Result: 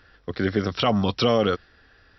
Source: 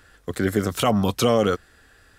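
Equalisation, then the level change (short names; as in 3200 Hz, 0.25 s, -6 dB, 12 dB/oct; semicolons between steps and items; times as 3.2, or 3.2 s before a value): dynamic EQ 3700 Hz, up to +4 dB, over -41 dBFS, Q 0.91; brick-wall FIR low-pass 5800 Hz; -1.5 dB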